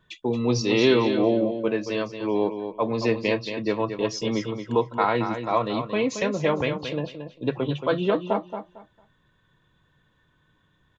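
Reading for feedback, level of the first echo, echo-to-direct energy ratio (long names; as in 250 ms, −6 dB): 22%, −8.5 dB, −8.5 dB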